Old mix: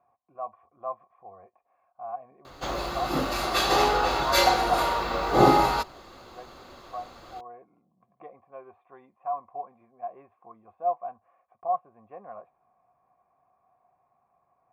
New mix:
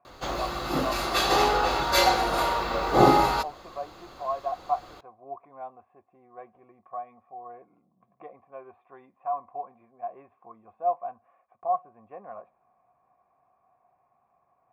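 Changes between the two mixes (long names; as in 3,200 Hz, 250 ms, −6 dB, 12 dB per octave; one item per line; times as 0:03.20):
speech: send on
background: entry −2.40 s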